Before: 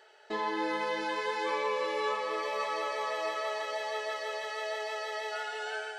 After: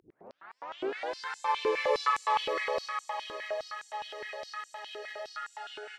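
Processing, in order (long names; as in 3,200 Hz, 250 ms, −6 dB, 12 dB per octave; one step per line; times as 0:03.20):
turntable start at the beginning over 1.18 s
source passing by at 0:02.08, 8 m/s, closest 3.6 metres
upward compression, threshold −38 dBFS
on a send: single-tap delay 270 ms −4.5 dB
on the sum: high-pass on a step sequencer 9.7 Hz 360–7,300 Hz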